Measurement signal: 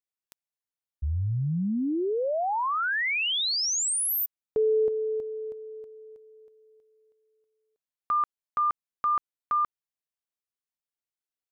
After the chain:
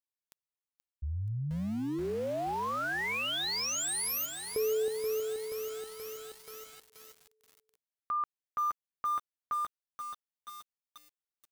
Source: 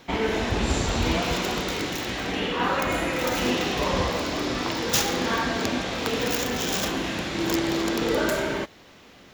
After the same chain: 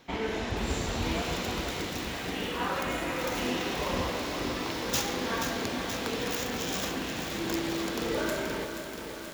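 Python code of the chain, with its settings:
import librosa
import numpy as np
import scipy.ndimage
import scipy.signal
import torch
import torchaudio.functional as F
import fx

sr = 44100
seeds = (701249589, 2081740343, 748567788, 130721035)

y = fx.echo_crushed(x, sr, ms=479, feedback_pct=80, bits=6, wet_db=-7)
y = y * 10.0 ** (-7.0 / 20.0)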